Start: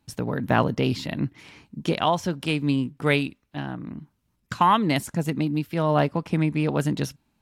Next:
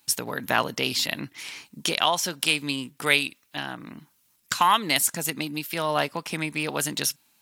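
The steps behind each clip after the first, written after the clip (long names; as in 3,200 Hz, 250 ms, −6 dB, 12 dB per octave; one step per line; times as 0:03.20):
in parallel at +1.5 dB: downward compressor, threshold −29 dBFS, peak gain reduction 14.5 dB
on the sum: spectral tilt +4.5 dB per octave
level −3 dB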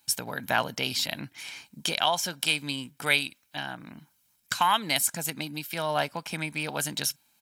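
comb filter 1.3 ms, depth 38%
level −3.5 dB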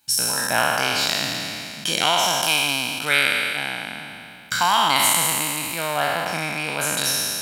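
peak hold with a decay on every bin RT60 2.60 s
level +1 dB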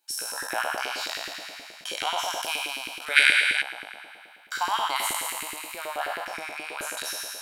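auto-filter high-pass saw up 9.4 Hz 320–2,000 Hz
gain on a spectral selection 0:03.16–0:03.62, 1,400–11,000 Hz +11 dB
level −11.5 dB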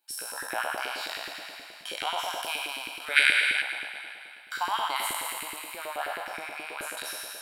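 parametric band 6,300 Hz −9 dB 0.43 octaves
feedback echo with a high-pass in the loop 261 ms, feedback 52%, high-pass 570 Hz, level −12.5 dB
level −2.5 dB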